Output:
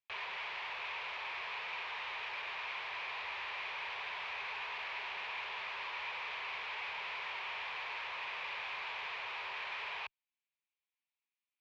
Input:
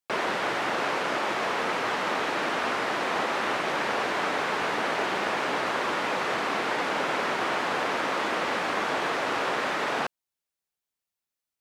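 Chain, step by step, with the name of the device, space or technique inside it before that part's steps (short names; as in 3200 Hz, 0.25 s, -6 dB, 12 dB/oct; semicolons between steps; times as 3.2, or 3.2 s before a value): scooped metal amplifier (tube stage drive 41 dB, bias 0.8; speaker cabinet 100–3500 Hz, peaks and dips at 130 Hz -10 dB, 240 Hz -9 dB, 400 Hz +7 dB, 970 Hz +8 dB, 1400 Hz -5 dB, 2400 Hz +8 dB; passive tone stack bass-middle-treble 10-0-10); gain +5 dB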